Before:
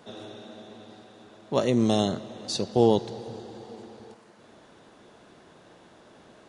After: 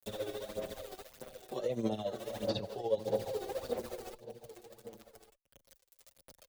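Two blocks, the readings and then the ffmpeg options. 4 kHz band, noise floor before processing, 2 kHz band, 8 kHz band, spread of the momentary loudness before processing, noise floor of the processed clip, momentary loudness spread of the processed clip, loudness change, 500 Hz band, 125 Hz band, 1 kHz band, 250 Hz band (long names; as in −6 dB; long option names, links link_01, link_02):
−10.5 dB, −55 dBFS, −7.0 dB, −10.5 dB, 22 LU, −82 dBFS, 17 LU, −12.5 dB, −7.5 dB, −13.5 dB, −11.0 dB, −14.0 dB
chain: -filter_complex "[0:a]aeval=exprs='val(0)*gte(abs(val(0)),0.00631)':channel_layout=same,acrossover=split=3900[link_01][link_02];[link_02]acompressor=threshold=-53dB:ratio=4:attack=1:release=60[link_03];[link_01][link_03]amix=inputs=2:normalize=0,lowshelf=frequency=200:gain=7,alimiter=limit=-17.5dB:level=0:latency=1:release=178,acrossover=split=410|3100[link_04][link_05][link_06];[link_04]acompressor=threshold=-41dB:ratio=4[link_07];[link_05]acompressor=threshold=-40dB:ratio=4[link_08];[link_06]acompressor=threshold=-58dB:ratio=4[link_09];[link_07][link_08][link_09]amix=inputs=3:normalize=0,equalizer=frequency=550:width=2.5:gain=14,crystalizer=i=3:c=0,aphaser=in_gain=1:out_gain=1:delay=2.7:decay=0.62:speed=1.6:type=sinusoidal,tremolo=f=14:d=0.69,asplit=2[link_10][link_11];[link_11]aecho=0:1:1152:0.168[link_12];[link_10][link_12]amix=inputs=2:normalize=0,asplit=2[link_13][link_14];[link_14]adelay=6.8,afreqshift=-0.38[link_15];[link_13][link_15]amix=inputs=2:normalize=1"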